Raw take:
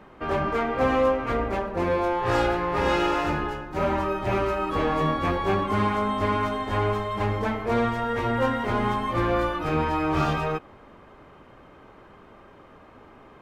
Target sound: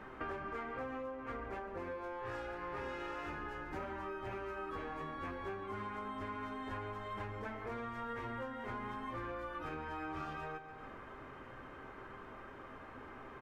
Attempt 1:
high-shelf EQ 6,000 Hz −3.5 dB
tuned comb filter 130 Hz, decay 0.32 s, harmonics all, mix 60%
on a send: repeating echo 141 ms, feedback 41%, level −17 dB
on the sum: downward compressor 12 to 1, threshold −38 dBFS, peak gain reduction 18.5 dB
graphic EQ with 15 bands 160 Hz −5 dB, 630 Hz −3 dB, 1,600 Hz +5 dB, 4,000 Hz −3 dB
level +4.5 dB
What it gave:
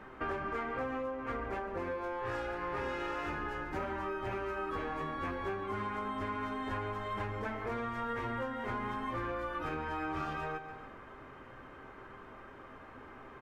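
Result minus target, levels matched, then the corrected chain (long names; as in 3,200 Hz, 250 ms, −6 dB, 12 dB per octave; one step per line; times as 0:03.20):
downward compressor: peak gain reduction −5.5 dB
high-shelf EQ 6,000 Hz −3.5 dB
tuned comb filter 130 Hz, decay 0.32 s, harmonics all, mix 60%
on a send: repeating echo 141 ms, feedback 41%, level −17 dB
on the sum: downward compressor 12 to 1, threshold −44 dBFS, peak gain reduction 24 dB
graphic EQ with 15 bands 160 Hz −5 dB, 630 Hz −3 dB, 1,600 Hz +5 dB, 4,000 Hz −3 dB
level +4.5 dB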